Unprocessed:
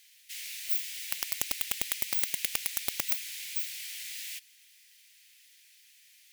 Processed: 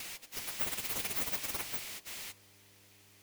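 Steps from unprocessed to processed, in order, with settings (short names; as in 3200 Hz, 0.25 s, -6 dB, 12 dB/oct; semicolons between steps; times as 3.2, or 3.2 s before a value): slices in reverse order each 0.162 s, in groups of 4; low shelf 280 Hz +4 dB; buzz 100 Hz, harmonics 29, -64 dBFS -6 dB/oct; in parallel at -9 dB: sample-rate reducer 5100 Hz, jitter 0%; on the sum: de-hum 50.6 Hz, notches 23; plain phase-vocoder stretch 0.51×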